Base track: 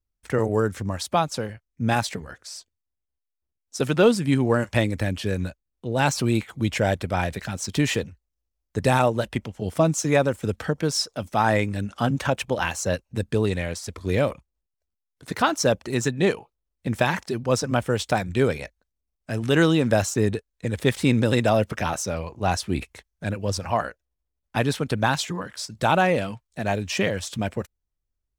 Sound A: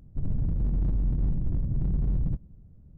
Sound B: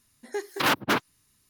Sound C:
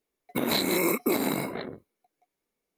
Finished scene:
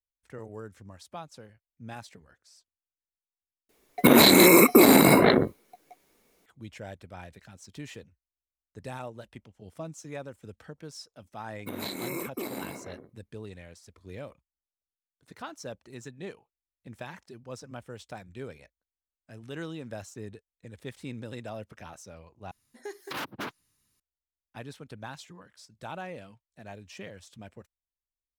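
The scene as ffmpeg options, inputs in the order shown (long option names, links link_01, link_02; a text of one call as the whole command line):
ffmpeg -i bed.wav -i cue0.wav -i cue1.wav -i cue2.wav -filter_complex "[3:a]asplit=2[link_01][link_02];[0:a]volume=-19.5dB[link_03];[link_01]alimiter=level_in=22.5dB:limit=-1dB:release=50:level=0:latency=1[link_04];[2:a]acompressor=threshold=-25dB:ratio=6:attack=3.2:release=140:knee=1:detection=peak[link_05];[link_03]asplit=3[link_06][link_07][link_08];[link_06]atrim=end=3.694[link_09];[link_04]atrim=end=2.77,asetpts=PTS-STARTPTS,volume=-5dB[link_10];[link_07]atrim=start=6.456:end=22.514[link_11];[link_05]atrim=end=1.49,asetpts=PTS-STARTPTS,volume=-7dB[link_12];[link_08]atrim=start=23.996[link_13];[link_02]atrim=end=2.77,asetpts=PTS-STARTPTS,volume=-10dB,afade=type=in:duration=0.004:curve=hsin,afade=type=out:start_time=2.766:duration=0.004:curve=hsin,adelay=11310[link_14];[link_09][link_10]acrossfade=duration=0.004:curve1=hsin:curve2=hsin[link_15];[link_15][link_11]acrossfade=duration=0.004:curve1=hsin:curve2=hsin[link_16];[link_16][link_12]acrossfade=duration=0.004:curve1=hsin:curve2=hsin[link_17];[link_17][link_13]acrossfade=duration=0.004:curve1=hsin:curve2=hsin[link_18];[link_18][link_14]amix=inputs=2:normalize=0" out.wav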